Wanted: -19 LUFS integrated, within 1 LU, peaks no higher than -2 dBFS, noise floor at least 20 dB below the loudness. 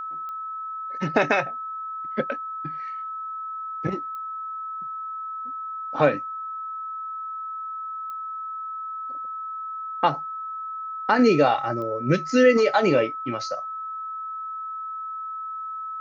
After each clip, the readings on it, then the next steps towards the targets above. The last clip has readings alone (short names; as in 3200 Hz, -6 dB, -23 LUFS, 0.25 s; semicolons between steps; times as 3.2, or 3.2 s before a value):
clicks 4; steady tone 1300 Hz; tone level -30 dBFS; loudness -26.5 LUFS; peak -5.5 dBFS; loudness target -19.0 LUFS
-> de-click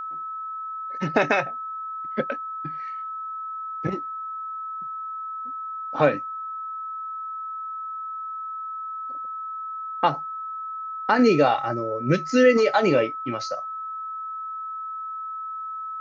clicks 0; steady tone 1300 Hz; tone level -30 dBFS
-> notch 1300 Hz, Q 30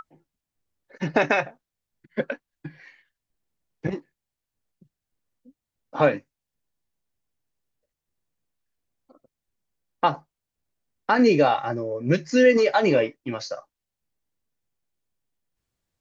steady tone none; loudness -22.5 LUFS; peak -6.0 dBFS; loudness target -19.0 LUFS
-> gain +3.5 dB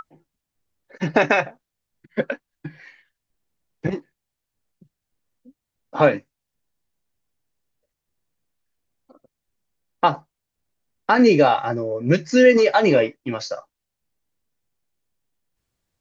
loudness -19.0 LUFS; peak -2.5 dBFS; noise floor -83 dBFS